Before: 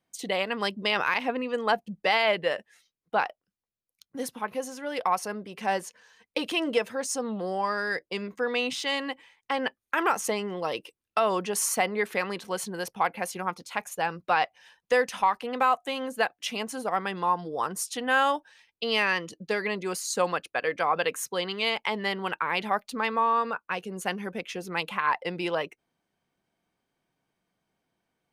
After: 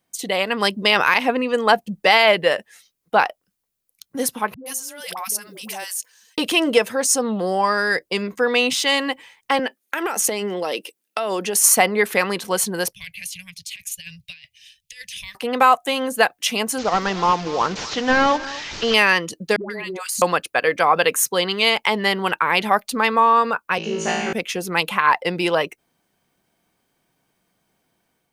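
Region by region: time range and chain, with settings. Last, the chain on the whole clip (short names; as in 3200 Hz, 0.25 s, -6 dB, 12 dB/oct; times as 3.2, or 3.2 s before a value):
4.54–6.38 pre-emphasis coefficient 0.9 + dispersion highs, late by 0.119 s, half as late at 450 Hz + backwards sustainer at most 43 dB/s
9.59–11.64 HPF 200 Hz 24 dB/oct + bell 1100 Hz -6 dB 0.55 oct + compressor 10:1, threshold -28 dBFS
12.93–15.35 inverse Chebyshev band-stop 230–1400 Hz + high shelf 5700 Hz -8.5 dB + negative-ratio compressor -45 dBFS, ratio -0.5
16.78–18.94 delta modulation 32 kbps, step -36 dBFS + echo 0.24 s -17.5 dB
19.56–20.22 dispersion highs, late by 0.143 s, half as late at 570 Hz + compressor 5:1, threshold -36 dBFS + notch 5400 Hz, Q 22
23.78–24.33 Chebyshev band-pass 140–6300 Hz, order 4 + compressor 2.5:1, threshold -32 dBFS + flutter echo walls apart 3.1 m, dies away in 1.1 s
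whole clip: high shelf 7500 Hz +10 dB; AGC gain up to 4 dB; gain +5 dB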